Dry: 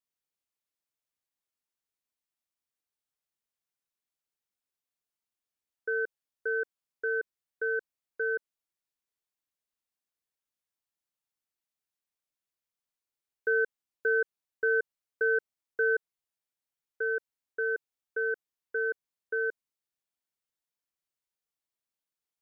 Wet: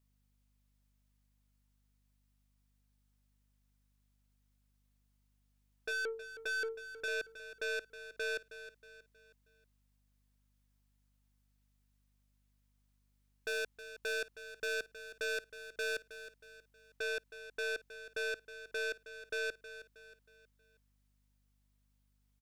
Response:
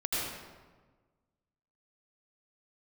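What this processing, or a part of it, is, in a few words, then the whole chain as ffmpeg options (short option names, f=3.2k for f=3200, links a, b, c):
valve amplifier with mains hum: -filter_complex "[0:a]asettb=1/sr,asplit=3[a][b][c];[a]atrim=end=5.894[d];[b]atrim=start=5.89:end=7.08,asetpts=PTS-STARTPTS,afade=t=in:d=0.004:c=qsin,afade=t=out:st=1.186:d=0.004:c=qsin,bandreject=f=50:t=h:w=6,bandreject=f=100:t=h:w=6,bandreject=f=150:t=h:w=6,bandreject=f=200:t=h:w=6,bandreject=f=250:t=h:w=6,bandreject=f=300:t=h:w=6,bandreject=f=350:t=h:w=6,bandreject=f=400:t=h:w=6,bandreject=f=450:t=h:w=6[e];[c]atrim=start=7.076[f];[d][e]acrossfade=d=0.004:c1=hsin:c2=qsin[g];[g][f]acrossfade=d=0.004:c1=qsin:c2=hsin,aeval=exprs='(tanh(100*val(0)+0.1)-tanh(0.1))/100':c=same,aeval=exprs='val(0)+0.000112*(sin(2*PI*50*n/s)+sin(2*PI*2*50*n/s)/2+sin(2*PI*3*50*n/s)/3+sin(2*PI*4*50*n/s)/4+sin(2*PI*5*50*n/s)/5)':c=same,aecho=1:1:317|634|951|1268:0.224|0.094|0.0395|0.0166,volume=5dB"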